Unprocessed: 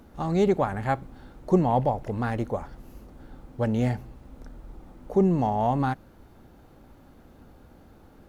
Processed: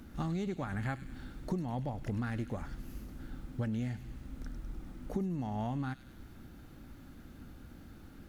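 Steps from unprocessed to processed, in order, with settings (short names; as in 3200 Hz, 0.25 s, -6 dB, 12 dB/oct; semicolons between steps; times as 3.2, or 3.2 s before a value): band shelf 650 Hz -9 dB; compressor 16:1, threshold -33 dBFS, peak gain reduction 16.5 dB; thin delay 0.101 s, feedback 62%, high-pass 2800 Hz, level -8 dB; gain +1.5 dB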